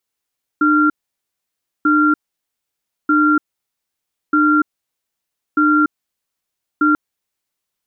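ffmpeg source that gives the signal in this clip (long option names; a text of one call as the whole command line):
ffmpeg -f lavfi -i "aevalsrc='0.224*(sin(2*PI*302*t)+sin(2*PI*1380*t))*clip(min(mod(t,1.24),0.29-mod(t,1.24))/0.005,0,1)':duration=6.34:sample_rate=44100" out.wav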